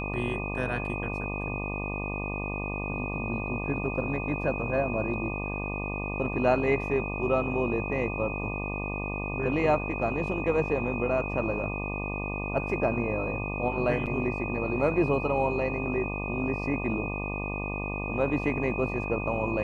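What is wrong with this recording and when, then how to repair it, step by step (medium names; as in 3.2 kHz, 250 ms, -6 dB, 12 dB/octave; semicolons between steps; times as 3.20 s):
buzz 50 Hz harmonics 24 -34 dBFS
whine 2.5 kHz -35 dBFS
14.06–14.07 s: dropout 6.8 ms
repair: band-stop 2.5 kHz, Q 30; de-hum 50 Hz, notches 24; interpolate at 14.06 s, 6.8 ms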